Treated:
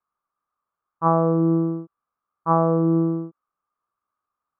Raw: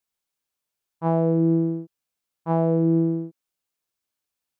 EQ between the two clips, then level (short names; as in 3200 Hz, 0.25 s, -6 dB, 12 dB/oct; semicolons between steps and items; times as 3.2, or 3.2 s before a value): synth low-pass 1200 Hz, resonance Q 12; air absorption 86 m; 0.0 dB